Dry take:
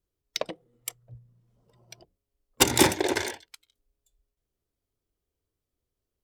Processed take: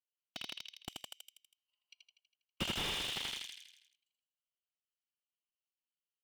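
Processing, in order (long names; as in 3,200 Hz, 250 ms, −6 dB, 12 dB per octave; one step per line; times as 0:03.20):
adaptive Wiener filter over 25 samples
in parallel at −1 dB: downward compressor, threshold −33 dBFS, peak gain reduction 18.5 dB
on the sum: four-pole ladder high-pass 2,800 Hz, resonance 75%
on a send at −21 dB: convolution reverb RT60 0.85 s, pre-delay 6 ms
on the sum: soft clipping −24 dBFS, distortion −8 dB
repeating echo 81 ms, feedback 56%, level −4 dB
slew-rate limiting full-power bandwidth 24 Hz
level +6 dB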